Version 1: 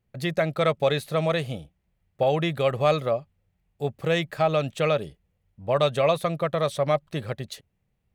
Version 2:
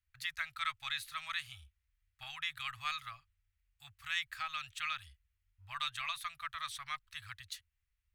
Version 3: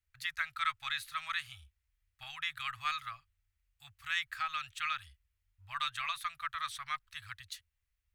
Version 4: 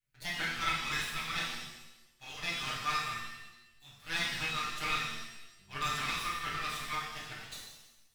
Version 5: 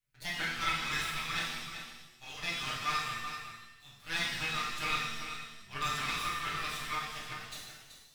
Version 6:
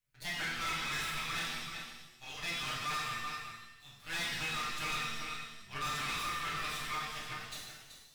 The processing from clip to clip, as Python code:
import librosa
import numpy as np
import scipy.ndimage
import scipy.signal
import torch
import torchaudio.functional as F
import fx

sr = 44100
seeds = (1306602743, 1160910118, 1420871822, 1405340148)

y1 = scipy.signal.sosfilt(scipy.signal.cheby2(4, 60, [190.0, 540.0], 'bandstop', fs=sr, output='sos'), x)
y1 = F.gain(torch.from_numpy(y1), -6.0).numpy()
y2 = fx.dynamic_eq(y1, sr, hz=1400.0, q=1.4, threshold_db=-50.0, ratio=4.0, max_db=5)
y3 = fx.lower_of_two(y2, sr, delay_ms=6.7)
y3 = fx.rev_shimmer(y3, sr, seeds[0], rt60_s=1.0, semitones=7, shimmer_db=-8, drr_db=-5.5)
y3 = F.gain(torch.from_numpy(y3), -3.0).numpy()
y4 = y3 + 10.0 ** (-9.5 / 20.0) * np.pad(y3, (int(381 * sr / 1000.0), 0))[:len(y3)]
y5 = np.clip(10.0 ** (33.0 / 20.0) * y4, -1.0, 1.0) / 10.0 ** (33.0 / 20.0)